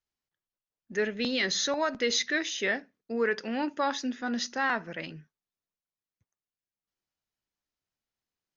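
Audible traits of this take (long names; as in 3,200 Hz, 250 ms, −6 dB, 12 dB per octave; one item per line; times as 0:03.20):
background noise floor −95 dBFS
spectral slope −2.0 dB per octave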